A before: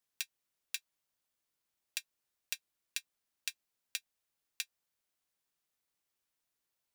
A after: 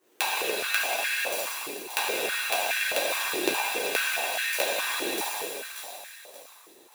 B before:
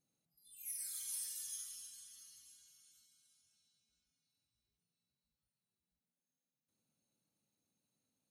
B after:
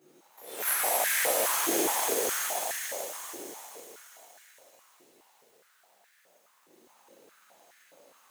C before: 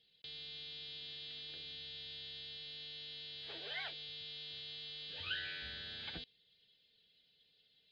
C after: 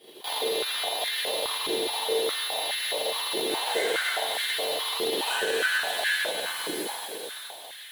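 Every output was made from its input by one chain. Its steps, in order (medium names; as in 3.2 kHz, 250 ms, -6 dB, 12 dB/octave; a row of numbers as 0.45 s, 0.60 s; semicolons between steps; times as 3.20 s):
median filter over 9 samples; chorus voices 2, 0.33 Hz, delay 13 ms, depth 3.1 ms; treble shelf 6 kHz +9.5 dB; on a send: feedback echo behind a high-pass 580 ms, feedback 35%, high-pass 5.1 kHz, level -7 dB; on the sum: plate-style reverb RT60 2.5 s, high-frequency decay 1×, DRR -9 dB; in parallel at -4 dB: sample-rate reducer 1.4 kHz, jitter 20%; on the sum: compression 5:1, threshold -46 dBFS; step-sequenced high-pass 4.8 Hz 360–1700 Hz; normalise loudness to -27 LUFS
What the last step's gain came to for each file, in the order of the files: +19.5 dB, +20.5 dB, +18.0 dB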